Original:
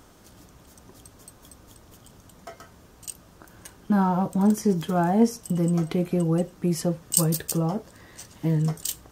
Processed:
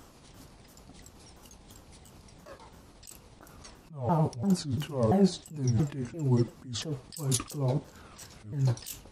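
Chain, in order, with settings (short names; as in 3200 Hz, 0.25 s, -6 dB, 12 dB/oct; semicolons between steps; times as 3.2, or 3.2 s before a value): repeated pitch sweeps -9 st, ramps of 0.341 s; band-limited delay 63 ms, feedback 36%, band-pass 1400 Hz, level -12 dB; attack slew limiter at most 120 dB/s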